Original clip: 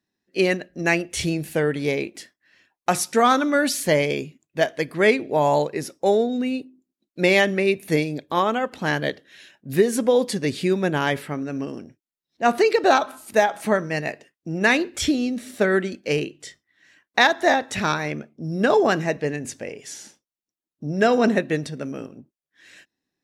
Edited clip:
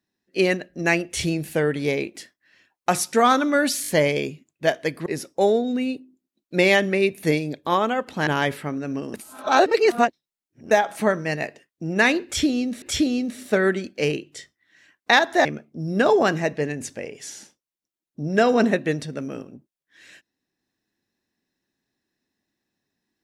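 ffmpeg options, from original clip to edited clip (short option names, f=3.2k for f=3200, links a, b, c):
-filter_complex "[0:a]asplit=10[a][b][c][d][e][f][g][h][i][j];[a]atrim=end=3.842[k];[b]atrim=start=3.818:end=3.842[l];[c]atrim=start=3.818:end=3.842[m];[d]atrim=start=3.818:end=5.002[n];[e]atrim=start=5.708:end=8.922[o];[f]atrim=start=10.918:end=11.792[p];[g]atrim=start=11.788:end=13.362,asetpts=PTS-STARTPTS,areverse[q];[h]atrim=start=13.358:end=15.472[r];[i]atrim=start=14.898:end=17.532[s];[j]atrim=start=18.088[t];[k][l]acrossfade=d=0.004:c1=hsin:c2=hsin[u];[u][m]acrossfade=d=0.004:c1=hsin:c2=hsin[v];[v][n]acrossfade=d=0.004:c1=hsin:c2=hsin[w];[w][o]acrossfade=d=0.004:c1=hsin:c2=hsin[x];[x][p]acrossfade=d=0.004:c1=hsin:c2=hsin[y];[y][q]acrossfade=d=0.004:c1=hsin:c2=hsin[z];[z][r]acrossfade=d=0.004:c1=hsin:c2=hsin[aa];[aa][s]acrossfade=d=0.004:c1=hsin:c2=hsin[ab];[ab][t]acrossfade=d=0.004:c1=hsin:c2=hsin"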